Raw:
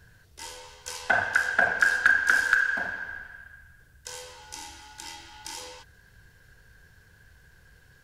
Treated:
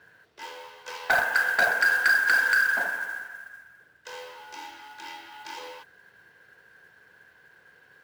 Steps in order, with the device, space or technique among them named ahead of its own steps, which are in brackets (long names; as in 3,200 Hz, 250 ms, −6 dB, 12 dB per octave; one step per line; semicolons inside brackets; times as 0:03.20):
carbon microphone (band-pass filter 340–2,800 Hz; soft clipping −19.5 dBFS, distortion −10 dB; noise that follows the level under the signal 20 dB)
level +4.5 dB